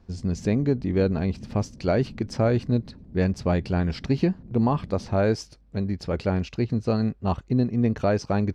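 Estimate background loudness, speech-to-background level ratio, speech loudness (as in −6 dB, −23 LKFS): −44.0 LKFS, 18.5 dB, −25.5 LKFS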